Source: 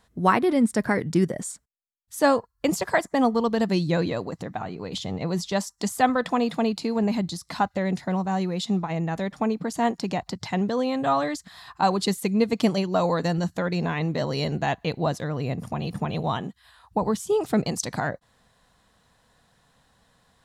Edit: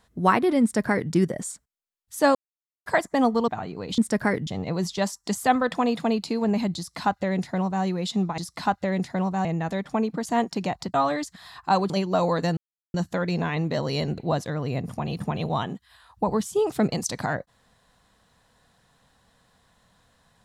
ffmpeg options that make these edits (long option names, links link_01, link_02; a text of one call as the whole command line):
ffmpeg -i in.wav -filter_complex "[0:a]asplit=12[link_01][link_02][link_03][link_04][link_05][link_06][link_07][link_08][link_09][link_10][link_11][link_12];[link_01]atrim=end=2.35,asetpts=PTS-STARTPTS,afade=type=out:start_time=2.346:duration=0.004:curve=hsin[link_13];[link_02]atrim=start=2.35:end=2.86,asetpts=PTS-STARTPTS,volume=0[link_14];[link_03]atrim=start=2.86:end=3.482,asetpts=PTS-STARTPTS,afade=type=in:duration=0.004:curve=hsin[link_15];[link_04]atrim=start=4.508:end=5.012[link_16];[link_05]atrim=start=0.618:end=1.112[link_17];[link_06]atrim=start=5.008:end=8.922[link_18];[link_07]atrim=start=7.308:end=8.382[link_19];[link_08]atrim=start=8.918:end=10.412[link_20];[link_09]atrim=start=11.058:end=12.022[link_21];[link_10]atrim=start=12.708:end=13.38,asetpts=PTS-STARTPTS,afade=type=out:start_time=0.668:duration=0.004:curve=hsin,apad=pad_dur=0.37[link_22];[link_11]atrim=start=13.38:end=14.622,asetpts=PTS-STARTPTS,afade=type=in:duration=0.004:curve=hsin[link_23];[link_12]atrim=start=14.918[link_24];[link_13][link_14][link_15]concat=n=3:v=0:a=1[link_25];[link_25][link_16]acrossfade=duration=0.004:curve1=hsin:curve2=hsin[link_26];[link_26][link_17]acrossfade=duration=0.004:curve1=hsin:curve2=hsin[link_27];[link_27][link_18]acrossfade=duration=0.004:curve1=hsin:curve2=hsin[link_28];[link_28][link_19]acrossfade=duration=0.004:curve1=hsin:curve2=hsin[link_29];[link_29][link_20]acrossfade=duration=0.004:curve1=hsin:curve2=hsin[link_30];[link_30][link_21]acrossfade=duration=0.004:curve1=hsin:curve2=hsin[link_31];[link_22][link_23]concat=n=2:v=0:a=1[link_32];[link_31][link_32]acrossfade=duration=0.004:curve1=hsin:curve2=hsin[link_33];[link_33][link_24]acrossfade=duration=0.004:curve1=hsin:curve2=hsin" out.wav